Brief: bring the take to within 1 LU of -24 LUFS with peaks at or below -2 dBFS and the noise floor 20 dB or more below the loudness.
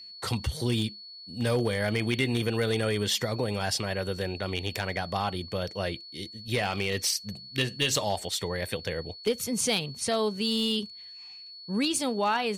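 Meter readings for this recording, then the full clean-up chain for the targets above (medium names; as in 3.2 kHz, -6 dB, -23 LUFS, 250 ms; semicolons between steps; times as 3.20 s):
clipped samples 0.2%; clipping level -18.0 dBFS; steady tone 4.4 kHz; tone level -43 dBFS; loudness -29.0 LUFS; peak level -18.0 dBFS; loudness target -24.0 LUFS
-> clip repair -18 dBFS; band-stop 4.4 kHz, Q 30; trim +5 dB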